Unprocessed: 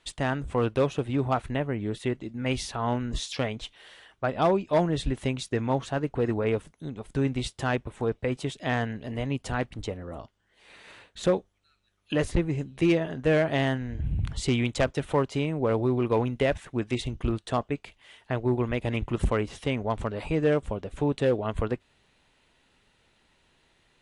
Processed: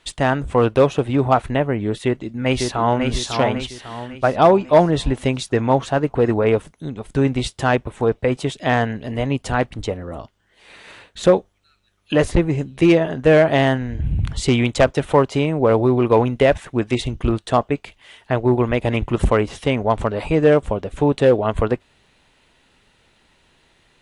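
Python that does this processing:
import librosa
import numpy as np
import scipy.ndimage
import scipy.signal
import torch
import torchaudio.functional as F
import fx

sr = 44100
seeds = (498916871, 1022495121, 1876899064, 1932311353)

y = fx.echo_throw(x, sr, start_s=2.02, length_s=1.03, ms=550, feedback_pct=45, wet_db=-4.5)
y = fx.dynamic_eq(y, sr, hz=720.0, q=0.76, threshold_db=-36.0, ratio=4.0, max_db=4)
y = y * librosa.db_to_amplitude(7.5)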